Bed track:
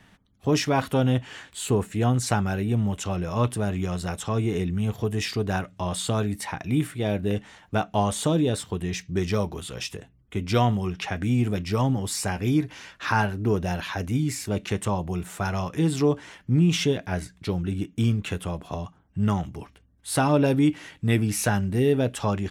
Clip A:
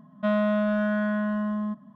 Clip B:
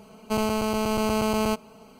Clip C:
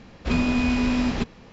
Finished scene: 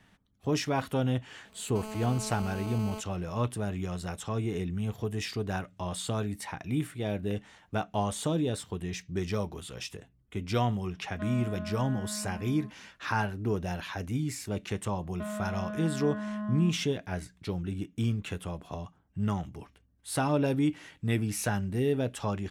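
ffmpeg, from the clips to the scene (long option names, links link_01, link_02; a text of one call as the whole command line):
ffmpeg -i bed.wav -i cue0.wav -i cue1.wav -filter_complex "[1:a]asplit=2[link_01][link_02];[0:a]volume=-6.5dB[link_03];[2:a]alimiter=limit=-18dB:level=0:latency=1:release=71[link_04];[link_02]alimiter=limit=-24dB:level=0:latency=1:release=71[link_05];[link_04]atrim=end=1.99,asetpts=PTS-STARTPTS,volume=-11.5dB,afade=type=in:duration=0.004:curve=hsin,afade=type=out:start_time=1.986:duration=0.004:curve=hsin,adelay=1450[link_06];[link_01]atrim=end=1.95,asetpts=PTS-STARTPTS,volume=-15dB,afade=type=in:duration=0.004:curve=hsin,afade=type=out:start_time=1.946:duration=0.004:curve=hsin,adelay=10960[link_07];[link_05]atrim=end=1.95,asetpts=PTS-STARTPTS,volume=-6dB,afade=type=in:duration=0.004:curve=hsin,afade=type=out:start_time=1.946:duration=0.004:curve=hsin,adelay=14970[link_08];[link_03][link_06][link_07][link_08]amix=inputs=4:normalize=0" out.wav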